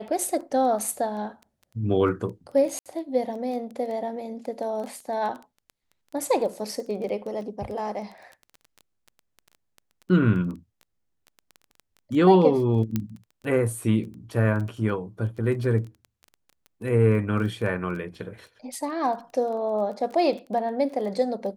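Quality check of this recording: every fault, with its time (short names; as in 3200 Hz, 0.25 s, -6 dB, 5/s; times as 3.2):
crackle 13/s -33 dBFS
2.79–2.86 gap 67 ms
12.96 pop -12 dBFS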